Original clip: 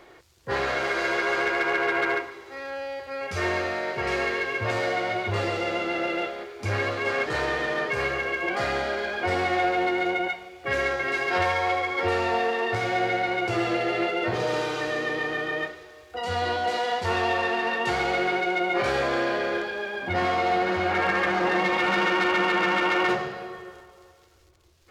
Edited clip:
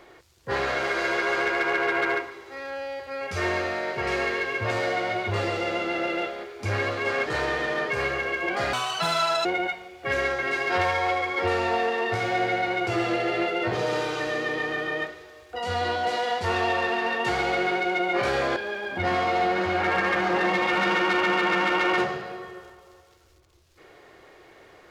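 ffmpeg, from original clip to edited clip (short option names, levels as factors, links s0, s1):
-filter_complex "[0:a]asplit=4[s0][s1][s2][s3];[s0]atrim=end=8.734[s4];[s1]atrim=start=8.73:end=10.06,asetpts=PTS-STARTPTS,asetrate=81144,aresample=44100[s5];[s2]atrim=start=10.056:end=19.172[s6];[s3]atrim=start=19.668[s7];[s4][s5]acrossfade=d=0.004:c1=hsin:c2=hsin[s8];[s8][s6]acrossfade=d=0.004:c1=hsin:c2=hsin[s9];[s9][s7]acrossfade=d=0.004:c1=hsin:c2=hsin"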